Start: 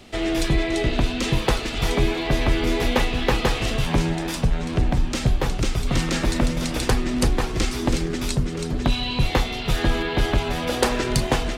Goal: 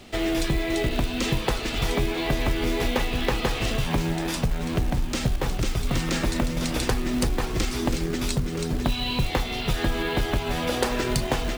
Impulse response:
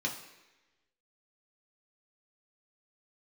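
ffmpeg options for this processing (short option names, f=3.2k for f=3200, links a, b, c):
-af "acompressor=threshold=-21dB:ratio=3,acrusher=bits=5:mode=log:mix=0:aa=0.000001"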